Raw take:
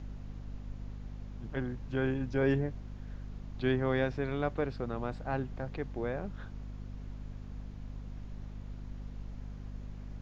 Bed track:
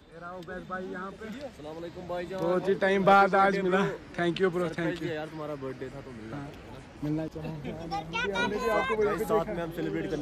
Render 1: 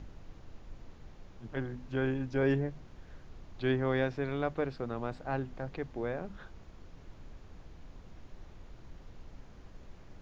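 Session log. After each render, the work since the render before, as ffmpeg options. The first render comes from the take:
-af "bandreject=f=50:t=h:w=6,bandreject=f=100:t=h:w=6,bandreject=f=150:t=h:w=6,bandreject=f=200:t=h:w=6,bandreject=f=250:t=h:w=6"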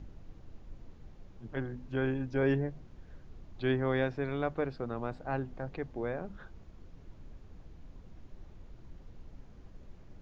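-af "afftdn=nr=6:nf=-54"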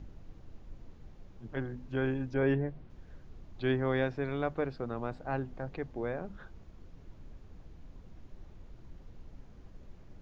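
-filter_complex "[0:a]asettb=1/sr,asplit=3[s0][s1][s2];[s0]atrim=end=2.344[s3];[s1]atrim=start=2.34:end=2.9,asetpts=PTS-STARTPTS,afade=t=in:d=0.004:c=qsin,afade=t=out:st=0.556:d=0.004:c=qsin,lowpass=3700[s4];[s2]atrim=start=2.896[s5];[s3][s4]acrossfade=d=0.004:c1=hsin:c2=qsin[s6];[s6][s5]acrossfade=d=0.004:c1=qsin:c2=hsin"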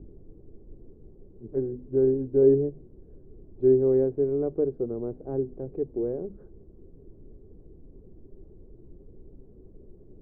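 -af "lowpass=f=400:t=q:w=4.8"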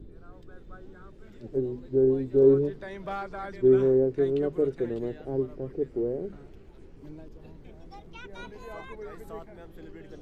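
-filter_complex "[1:a]volume=0.178[s0];[0:a][s0]amix=inputs=2:normalize=0"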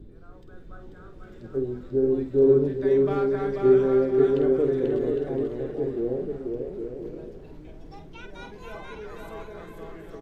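-filter_complex "[0:a]asplit=2[s0][s1];[s1]adelay=49,volume=0.376[s2];[s0][s2]amix=inputs=2:normalize=0,aecho=1:1:490|808.5|1016|1150|1238:0.631|0.398|0.251|0.158|0.1"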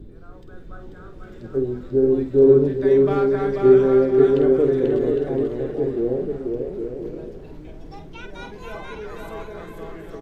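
-af "volume=1.78"

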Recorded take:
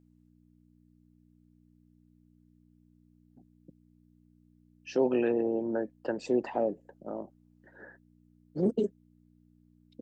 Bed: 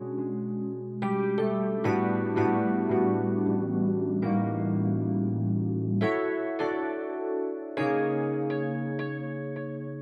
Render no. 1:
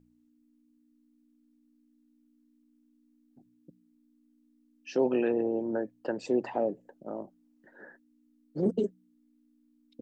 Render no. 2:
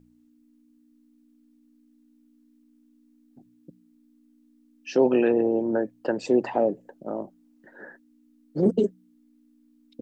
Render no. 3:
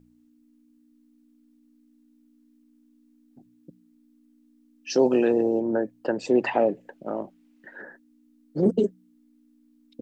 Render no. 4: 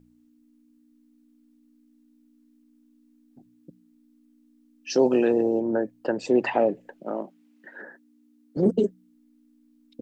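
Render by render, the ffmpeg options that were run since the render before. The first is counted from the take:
-af "bandreject=f=60:t=h:w=4,bandreject=f=120:t=h:w=4,bandreject=f=180:t=h:w=4"
-af "volume=2.11"
-filter_complex "[0:a]asettb=1/sr,asplit=3[s0][s1][s2];[s0]atrim=end=4.904[s3];[s1]atrim=start=4.9:end=5.6,asetpts=PTS-STARTPTS,afade=t=in:d=0.004:c=qsin,afade=t=out:st=0.696:d=0.004:c=qsin,highshelf=f=3600:t=q:w=1.5:g=9[s4];[s2]atrim=start=5.596[s5];[s3][s4]acrossfade=d=0.004:c1=hsin:c2=qsin[s6];[s6][s5]acrossfade=d=0.004:c1=qsin:c2=hsin,asettb=1/sr,asplit=3[s7][s8][s9];[s7]atrim=end=6.354[s10];[s8]atrim=start=6.35:end=7.82,asetpts=PTS-STARTPTS,afade=t=in:d=0.004:c=qsin,afade=t=out:st=1.466:d=0.004:c=qsin,equalizer=f=2400:w=0.81:g=11[s11];[s9]atrim=start=7.816[s12];[s10][s11]acrossfade=d=0.004:c1=hsin:c2=qsin[s13];[s13][s12]acrossfade=d=0.004:c1=qsin:c2=hsin"
-filter_complex "[0:a]asettb=1/sr,asplit=3[s0][s1][s2];[s0]atrim=end=7.004[s3];[s1]atrim=start=7:end=8.57,asetpts=PTS-STARTPTS,afade=t=in:d=0.004:c=qsin,afade=t=out:st=1.566:d=0.004:c=qsin,highpass=f=170:w=0.5412,highpass=f=170:w=1.3066[s4];[s2]atrim=start=8.566[s5];[s3][s4]acrossfade=d=0.004:c1=hsin:c2=qsin[s6];[s6][s5]acrossfade=d=0.004:c1=qsin:c2=hsin"

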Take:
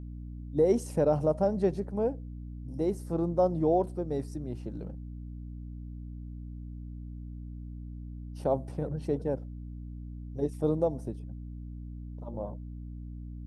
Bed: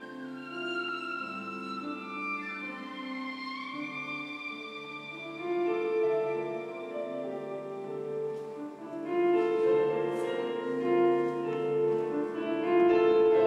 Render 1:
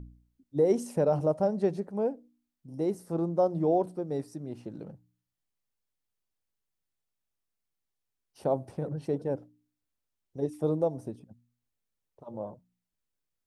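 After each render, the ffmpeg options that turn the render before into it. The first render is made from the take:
-af "bandreject=f=60:t=h:w=4,bandreject=f=120:t=h:w=4,bandreject=f=180:t=h:w=4,bandreject=f=240:t=h:w=4,bandreject=f=300:t=h:w=4"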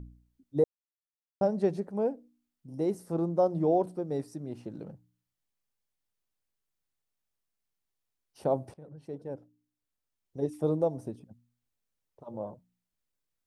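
-filter_complex "[0:a]asplit=4[s0][s1][s2][s3];[s0]atrim=end=0.64,asetpts=PTS-STARTPTS,afade=t=out:st=0.636:d=0.004:c=hsin[s4];[s1]atrim=start=0.64:end=1.41,asetpts=PTS-STARTPTS,volume=0[s5];[s2]atrim=start=1.41:end=8.74,asetpts=PTS-STARTPTS,afade=t=in:d=0.004:c=hsin,afade=t=out:st=7.326:d=0.004:c=hsin:silence=0.11885[s6];[s3]atrim=start=8.74,asetpts=PTS-STARTPTS,afade=t=in:d=1.7:silence=0.11885[s7];[s4][s5][s6][s7]concat=n=4:v=0:a=1"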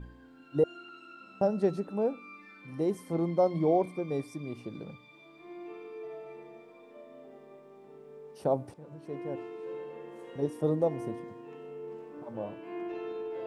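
-filter_complex "[1:a]volume=0.188[s0];[0:a][s0]amix=inputs=2:normalize=0"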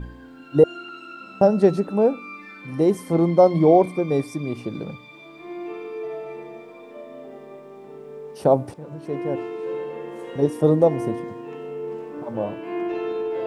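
-af "volume=3.55"

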